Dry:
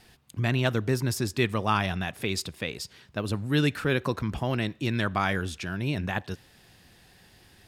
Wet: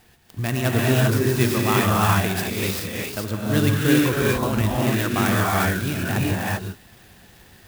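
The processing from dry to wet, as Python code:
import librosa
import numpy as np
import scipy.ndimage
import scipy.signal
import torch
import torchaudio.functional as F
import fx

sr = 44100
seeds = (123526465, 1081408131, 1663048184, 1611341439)

y = fx.rev_gated(x, sr, seeds[0], gate_ms=420, shape='rising', drr_db=-5.0)
y = fx.clock_jitter(y, sr, seeds[1], jitter_ms=0.042)
y = y * librosa.db_to_amplitude(1.0)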